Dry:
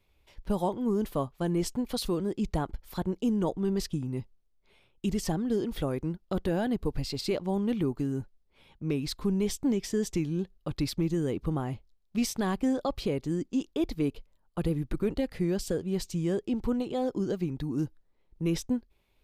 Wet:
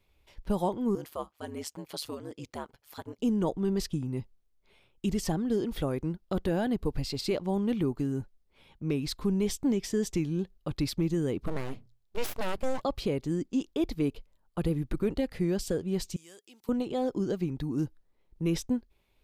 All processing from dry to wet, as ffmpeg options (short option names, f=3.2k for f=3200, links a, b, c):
-filter_complex "[0:a]asettb=1/sr,asplit=3[a][b][c];[a]atrim=end=0.954[d];[b]atrim=start=0.95:end=3.19,asetpts=PTS-STARTPTS,afade=t=in:d=0.004:c=qsin,afade=t=out:st=2.236:d=0.004:c=qsin,highpass=f=670:p=1,bandreject=f=3.8k:w=23,aeval=exprs='val(0)*sin(2*PI*75*n/s)':c=same[e];[c]atrim=start=3.186[f];[d][e]acrossfade=d=0.004:c1=hsin:c2=qsin[g];[g][f]acrossfade=d=0.004:c1=qsin:c2=hsin,asettb=1/sr,asplit=3[h][i][j];[h]atrim=end=11.464[k];[i]atrim=start=11.46:end=12.84,asetpts=PTS-STARTPTS,afade=t=in:d=0.004:c=qsin,afade=t=out:st=1.376:d=0.004:c=qsin,bandreject=f=60:t=h:w=6,bandreject=f=120:t=h:w=6,aeval=exprs='abs(val(0))':c=same[l];[j]atrim=start=12.836[m];[k][l]acrossfade=d=0.004:c1=hsin:c2=qsin[n];[n][m]acrossfade=d=0.004:c1=qsin:c2=hsin,asettb=1/sr,asplit=3[o][p][q];[o]atrim=end=16.164[r];[p]atrim=start=16.16:end=16.69,asetpts=PTS-STARTPTS,afade=t=in:d=0.004:c=qsin,afade=t=out:st=0.526:d=0.004:c=qsin,highpass=50,aderivative[s];[q]atrim=start=16.686[t];[r][s]acrossfade=d=0.004:c1=hsin:c2=qsin[u];[u][t]acrossfade=d=0.004:c1=qsin:c2=hsin"